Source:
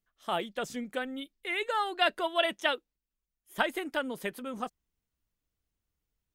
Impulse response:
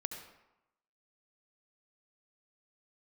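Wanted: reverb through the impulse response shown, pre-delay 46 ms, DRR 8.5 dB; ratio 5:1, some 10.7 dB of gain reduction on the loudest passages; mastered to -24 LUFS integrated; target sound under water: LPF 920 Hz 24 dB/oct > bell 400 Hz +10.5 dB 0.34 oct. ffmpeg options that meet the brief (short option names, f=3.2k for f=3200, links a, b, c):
-filter_complex "[0:a]acompressor=threshold=-34dB:ratio=5,asplit=2[a][b];[1:a]atrim=start_sample=2205,adelay=46[c];[b][c]afir=irnorm=-1:irlink=0,volume=-8dB[d];[a][d]amix=inputs=2:normalize=0,lowpass=f=920:w=0.5412,lowpass=f=920:w=1.3066,equalizer=f=400:t=o:w=0.34:g=10.5,volume=14.5dB"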